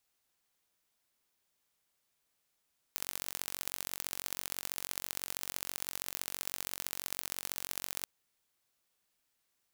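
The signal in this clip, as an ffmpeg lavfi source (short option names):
-f lavfi -i "aevalsrc='0.398*eq(mod(n,957),0)*(0.5+0.5*eq(mod(n,2871),0))':d=5.09:s=44100"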